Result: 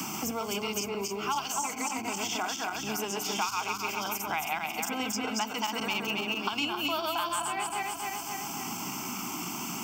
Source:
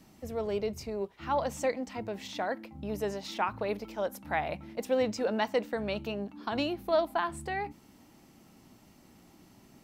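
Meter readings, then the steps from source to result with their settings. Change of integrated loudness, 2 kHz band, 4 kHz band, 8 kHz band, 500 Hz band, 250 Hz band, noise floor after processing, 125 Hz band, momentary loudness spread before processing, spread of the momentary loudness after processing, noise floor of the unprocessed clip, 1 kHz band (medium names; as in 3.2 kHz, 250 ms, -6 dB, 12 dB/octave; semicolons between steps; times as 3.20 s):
+1.5 dB, +5.5 dB, +10.5 dB, +16.0 dB, -6.0 dB, +0.5 dB, -38 dBFS, -1.5 dB, 8 LU, 5 LU, -59 dBFS, +3.5 dB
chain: backward echo that repeats 135 ms, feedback 61%, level -1 dB; high-pass 64 Hz; RIAA curve recording; static phaser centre 2.7 kHz, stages 8; three bands compressed up and down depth 100%; trim +3 dB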